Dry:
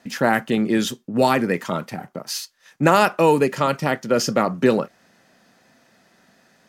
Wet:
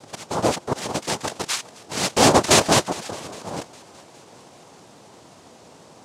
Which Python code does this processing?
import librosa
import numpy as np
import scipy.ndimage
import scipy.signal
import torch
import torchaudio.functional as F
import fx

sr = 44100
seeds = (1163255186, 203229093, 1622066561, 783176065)

p1 = fx.speed_glide(x, sr, from_pct=168, to_pct=53)
p2 = fx.auto_swell(p1, sr, attack_ms=693.0)
p3 = p2 + 10.0 ** (-49.0 / 20.0) * np.sin(2.0 * np.pi * 680.0 * np.arange(len(p2)) / sr)
p4 = np.where(np.abs(p3) >= 10.0 ** (-30.5 / 20.0), p3, 0.0)
p5 = p3 + (p4 * 10.0 ** (-7.0 / 20.0))
p6 = fx.noise_vocoder(p5, sr, seeds[0], bands=2)
p7 = p6 + fx.echo_thinned(p6, sr, ms=408, feedback_pct=49, hz=420.0, wet_db=-20, dry=0)
y = p7 * 10.0 ** (2.5 / 20.0)